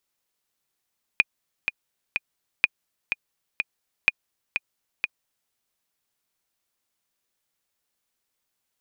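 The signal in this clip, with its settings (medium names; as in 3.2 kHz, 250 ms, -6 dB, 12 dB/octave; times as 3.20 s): metronome 125 bpm, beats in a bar 3, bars 3, 2.45 kHz, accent 7.5 dB -3.5 dBFS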